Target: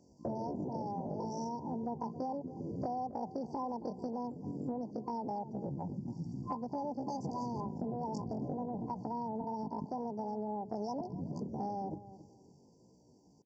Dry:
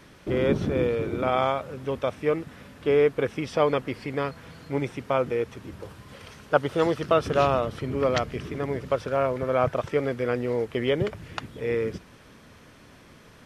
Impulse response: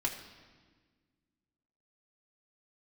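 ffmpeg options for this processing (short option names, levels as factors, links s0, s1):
-filter_complex "[0:a]aemphasis=mode=production:type=75kf,afwtdn=0.0178,afftfilt=real='re*(1-between(b*sr/4096,600,2600))':imag='im*(1-between(b*sr/4096,600,2600))':win_size=4096:overlap=0.75,highpass=54,bass=f=250:g=11,treble=f=4000:g=-2,acrossover=split=1700[s0][s1];[s0]dynaudnorm=f=170:g=17:m=2.66[s2];[s2][s1]amix=inputs=2:normalize=0,alimiter=limit=0.282:level=0:latency=1:release=80,acompressor=threshold=0.0224:ratio=12,asetrate=76340,aresample=44100,atempo=0.577676,asplit=2[s3][s4];[s4]adelay=274,lowpass=f=860:p=1,volume=0.211,asplit=2[s5][s6];[s6]adelay=274,lowpass=f=860:p=1,volume=0.23,asplit=2[s7][s8];[s8]adelay=274,lowpass=f=860:p=1,volume=0.23[s9];[s5][s7][s9]amix=inputs=3:normalize=0[s10];[s3][s10]amix=inputs=2:normalize=0,aresample=16000,aresample=44100,volume=0.794"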